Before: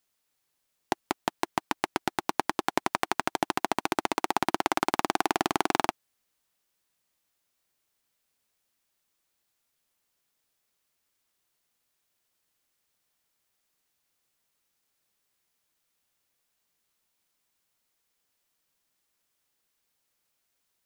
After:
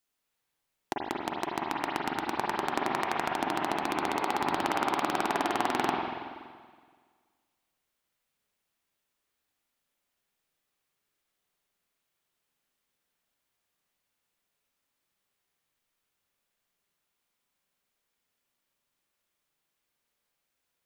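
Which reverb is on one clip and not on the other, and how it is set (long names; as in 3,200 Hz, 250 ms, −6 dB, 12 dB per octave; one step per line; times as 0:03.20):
spring reverb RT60 1.7 s, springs 40/47/52 ms, chirp 30 ms, DRR −3 dB
level −5.5 dB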